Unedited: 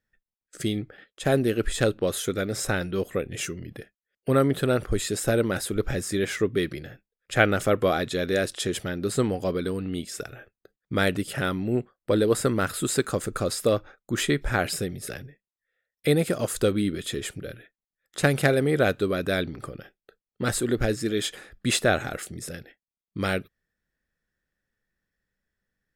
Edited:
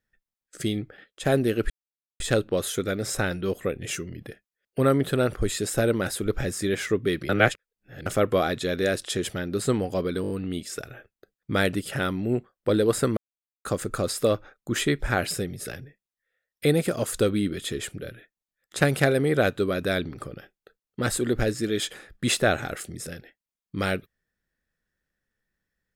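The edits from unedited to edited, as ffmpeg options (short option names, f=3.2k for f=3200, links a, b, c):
-filter_complex "[0:a]asplit=10[a][b][c][d][e][f][g][h][i][j];[a]atrim=end=1.7,asetpts=PTS-STARTPTS,afade=t=out:st=1.696:d=0.004:c=hsin,apad=pad_dur=0.5[k];[b]atrim=start=1.7:end=6.792,asetpts=PTS-STARTPTS,afade=t=in:d=0.004:c=hsin[l];[c]atrim=start=6.788:end=7.562,asetpts=PTS-STARTPTS,areverse[m];[d]atrim=start=7.558:end=9.742[n];[e]atrim=start=9.718:end=9.742[o];[f]atrim=start=9.718:end=9.742[p];[g]atrim=start=9.718:end=9.742[q];[h]atrim=start=9.718:end=12.59,asetpts=PTS-STARTPTS,afade=t=out:st=2.868:d=0.004:c=hsin[r];[i]atrim=start=12.59:end=13.07,asetpts=PTS-STARTPTS,volume=0[s];[j]atrim=start=13.07,asetpts=PTS-STARTPTS,afade=t=in:d=0.004:c=hsin[t];[k][l]concat=n=2:v=0:a=1[u];[u][m]acrossfade=d=0.004:c1=hsin:c2=hsin[v];[v][n]acrossfade=d=0.004:c1=hsin:c2=hsin[w];[w][o]acrossfade=d=0.004:c1=hsin:c2=hsin[x];[x][p]acrossfade=d=0.004:c1=hsin:c2=hsin[y];[y][q]acrossfade=d=0.004:c1=hsin:c2=hsin[z];[r][s][t]concat=n=3:v=0:a=1[aa];[z][aa]acrossfade=d=0.004:c1=hsin:c2=hsin"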